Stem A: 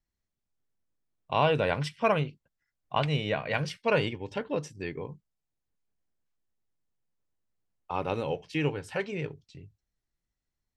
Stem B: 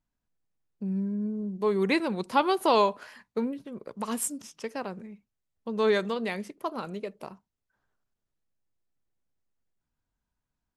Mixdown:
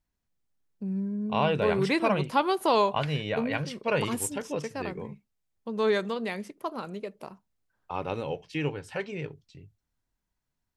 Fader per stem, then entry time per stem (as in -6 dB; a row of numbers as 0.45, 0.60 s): -1.5, -1.0 dB; 0.00, 0.00 s